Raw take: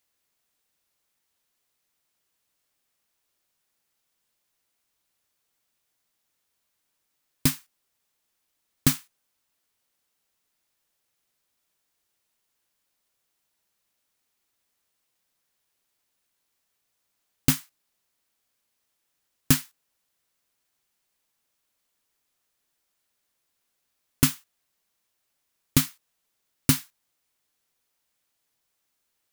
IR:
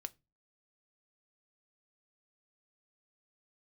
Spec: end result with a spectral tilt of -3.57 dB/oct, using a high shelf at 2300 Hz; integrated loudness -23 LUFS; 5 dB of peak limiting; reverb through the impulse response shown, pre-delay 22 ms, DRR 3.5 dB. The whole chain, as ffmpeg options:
-filter_complex "[0:a]highshelf=f=2.3k:g=-5.5,alimiter=limit=-9.5dB:level=0:latency=1,asplit=2[a][b];[1:a]atrim=start_sample=2205,adelay=22[c];[b][c]afir=irnorm=-1:irlink=0,volume=0dB[d];[a][d]amix=inputs=2:normalize=0,volume=7dB"

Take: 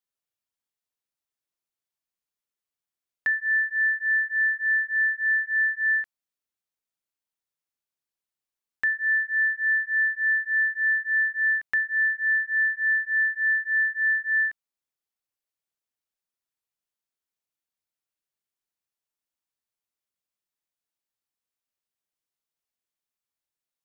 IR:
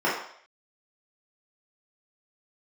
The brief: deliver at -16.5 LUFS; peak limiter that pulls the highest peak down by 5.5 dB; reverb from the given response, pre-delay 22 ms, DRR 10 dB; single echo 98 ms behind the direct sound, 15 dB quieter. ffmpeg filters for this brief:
-filter_complex "[0:a]alimiter=limit=-23.5dB:level=0:latency=1,aecho=1:1:98:0.178,asplit=2[a][b];[1:a]atrim=start_sample=2205,adelay=22[c];[b][c]afir=irnorm=-1:irlink=0,volume=-26dB[d];[a][d]amix=inputs=2:normalize=0,volume=11.5dB"

